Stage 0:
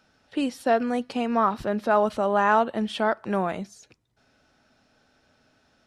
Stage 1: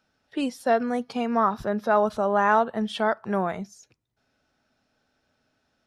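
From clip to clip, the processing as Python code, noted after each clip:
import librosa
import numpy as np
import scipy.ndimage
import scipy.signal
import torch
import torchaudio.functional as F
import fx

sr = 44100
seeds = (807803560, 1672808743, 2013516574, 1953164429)

y = fx.noise_reduce_blind(x, sr, reduce_db=8)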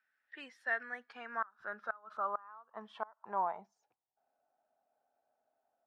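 y = fx.filter_sweep_bandpass(x, sr, from_hz=1800.0, to_hz=720.0, start_s=0.82, end_s=4.4, q=6.2)
y = fx.gate_flip(y, sr, shuts_db=-25.0, range_db=-27)
y = y * 10.0 ** (2.0 / 20.0)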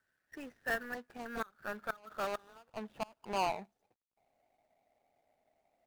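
y = scipy.ndimage.median_filter(x, 41, mode='constant')
y = y * 10.0 ** (9.5 / 20.0)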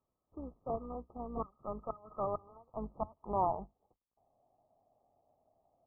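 y = fx.octave_divider(x, sr, octaves=2, level_db=-3.0)
y = fx.brickwall_lowpass(y, sr, high_hz=1300.0)
y = y * 10.0 ** (2.0 / 20.0)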